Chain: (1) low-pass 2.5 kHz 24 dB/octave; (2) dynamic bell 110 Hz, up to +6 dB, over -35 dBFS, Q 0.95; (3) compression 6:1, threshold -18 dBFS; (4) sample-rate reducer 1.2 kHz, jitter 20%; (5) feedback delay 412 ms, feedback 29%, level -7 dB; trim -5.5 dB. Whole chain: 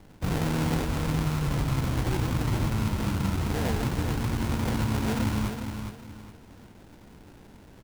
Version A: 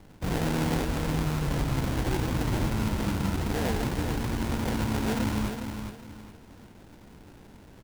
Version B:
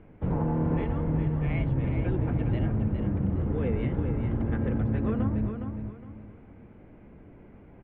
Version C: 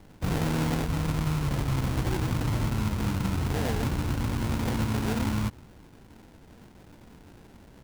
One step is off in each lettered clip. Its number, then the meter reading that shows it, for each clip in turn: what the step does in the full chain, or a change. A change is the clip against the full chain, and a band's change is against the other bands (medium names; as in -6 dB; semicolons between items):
2, 125 Hz band -2.5 dB; 4, distortion -4 dB; 5, momentary loudness spread change -6 LU